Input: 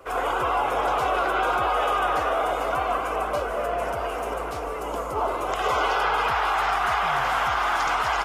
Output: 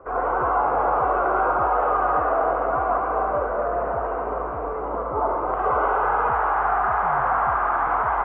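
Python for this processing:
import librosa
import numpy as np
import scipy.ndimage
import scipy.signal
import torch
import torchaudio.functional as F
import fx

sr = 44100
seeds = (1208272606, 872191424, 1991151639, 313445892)

y = scipy.signal.sosfilt(scipy.signal.butter(4, 1400.0, 'lowpass', fs=sr, output='sos'), x)
y = fx.echo_thinned(y, sr, ms=71, feedback_pct=81, hz=500.0, wet_db=-6.5)
y = F.gain(torch.from_numpy(y), 2.0).numpy()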